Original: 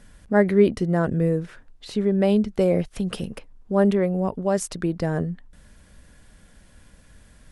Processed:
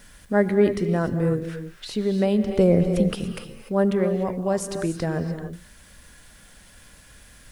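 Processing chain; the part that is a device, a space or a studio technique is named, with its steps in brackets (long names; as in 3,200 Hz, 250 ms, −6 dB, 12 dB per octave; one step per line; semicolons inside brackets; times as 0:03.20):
0:02.49–0:03.15: low-shelf EQ 410 Hz +8 dB
noise-reduction cassette on a plain deck (one half of a high-frequency compander encoder only; tape wow and flutter 12 cents; white noise bed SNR 41 dB)
reverb whose tail is shaped and stops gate 320 ms rising, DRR 7.5 dB
level −2 dB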